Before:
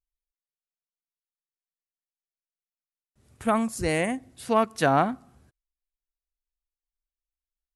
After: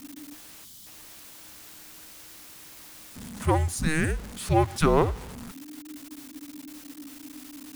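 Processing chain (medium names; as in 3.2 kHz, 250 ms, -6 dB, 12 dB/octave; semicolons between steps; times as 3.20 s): jump at every zero crossing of -35 dBFS; frequency shift -310 Hz; time-frequency box 0.65–0.86 s, 260–2900 Hz -12 dB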